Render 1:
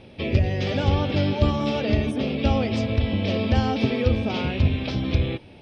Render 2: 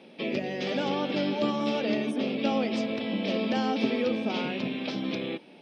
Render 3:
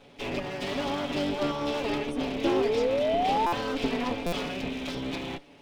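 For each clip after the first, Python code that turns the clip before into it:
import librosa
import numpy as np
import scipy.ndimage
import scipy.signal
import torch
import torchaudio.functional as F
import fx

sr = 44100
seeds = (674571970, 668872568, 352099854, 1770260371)

y1 = scipy.signal.sosfilt(scipy.signal.butter(6, 180.0, 'highpass', fs=sr, output='sos'), x)
y1 = y1 * librosa.db_to_amplitude(-3.0)
y2 = fx.lower_of_two(y1, sr, delay_ms=7.1)
y2 = fx.spec_paint(y2, sr, seeds[0], shape='rise', start_s=2.44, length_s=1.09, low_hz=330.0, high_hz=990.0, level_db=-26.0)
y2 = fx.buffer_glitch(y2, sr, at_s=(3.46, 4.26), block=256, repeats=10)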